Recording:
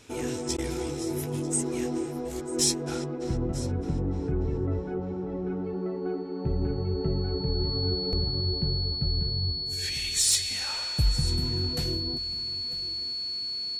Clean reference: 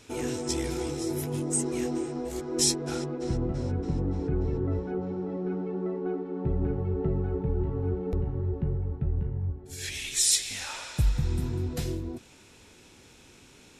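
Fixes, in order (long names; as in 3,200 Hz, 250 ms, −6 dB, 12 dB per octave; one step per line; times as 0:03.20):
clipped peaks rebuilt −15 dBFS
notch filter 4,400 Hz, Q 30
repair the gap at 0:00.57, 12 ms
echo removal 945 ms −17.5 dB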